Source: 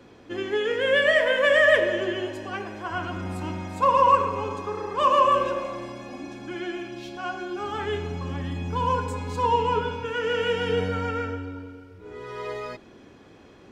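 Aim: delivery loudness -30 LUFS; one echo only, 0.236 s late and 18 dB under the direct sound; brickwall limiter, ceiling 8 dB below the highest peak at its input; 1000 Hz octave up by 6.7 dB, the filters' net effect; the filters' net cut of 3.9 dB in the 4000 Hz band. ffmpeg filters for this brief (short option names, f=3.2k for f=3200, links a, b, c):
-af "equalizer=f=1k:t=o:g=7.5,equalizer=f=4k:t=o:g=-7,alimiter=limit=-9dB:level=0:latency=1,aecho=1:1:236:0.126,volume=-8dB"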